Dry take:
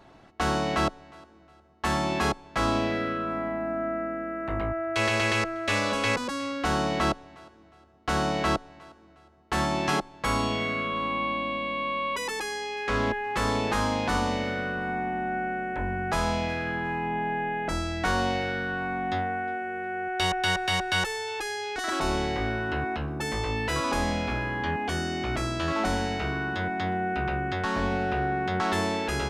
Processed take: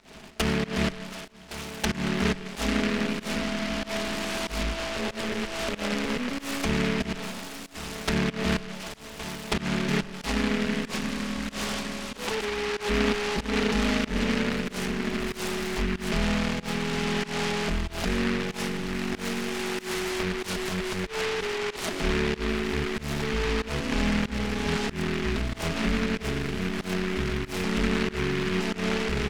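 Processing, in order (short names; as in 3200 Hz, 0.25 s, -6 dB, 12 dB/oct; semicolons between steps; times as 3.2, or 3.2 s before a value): rattling part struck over -40 dBFS, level -16 dBFS; in parallel at 0 dB: compressor 10:1, threshold -36 dBFS, peak gain reduction 16 dB; on the sum: running mean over 13 samples; comb 4.7 ms, depth 91%; on a send: feedback echo 1.113 s, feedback 56%, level -14 dB; on the sum: digital reverb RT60 1.3 s, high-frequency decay 0.5×, pre-delay 70 ms, DRR 15 dB; pump 94 bpm, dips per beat 1, -22 dB, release 0.188 s; treble ducked by the level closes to 500 Hz, closed at -22.5 dBFS; noise-modulated delay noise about 1800 Hz, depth 0.24 ms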